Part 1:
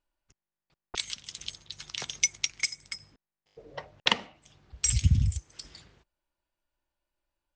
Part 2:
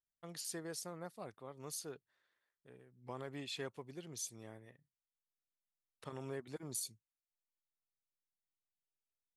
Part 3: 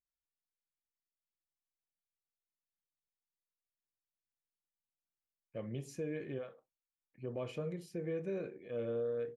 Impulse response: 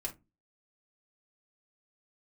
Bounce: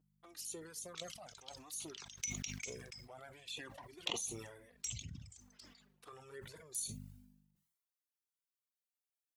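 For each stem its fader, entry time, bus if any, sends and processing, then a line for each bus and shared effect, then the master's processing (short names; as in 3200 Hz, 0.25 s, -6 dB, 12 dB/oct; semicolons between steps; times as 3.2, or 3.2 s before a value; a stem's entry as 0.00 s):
-14.0 dB, 0.00 s, send -11.5 dB, reverb removal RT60 0.85 s; hum 50 Hz, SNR 11 dB
+0.5 dB, 0.00 s, send -11 dB, high shelf 8000 Hz +9 dB; cascading flanger rising 0.52 Hz
off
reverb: on, RT60 0.20 s, pre-delay 3 ms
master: HPF 480 Hz 6 dB/oct; envelope flanger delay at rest 6.6 ms, full sweep at -41 dBFS; sustainer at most 54 dB/s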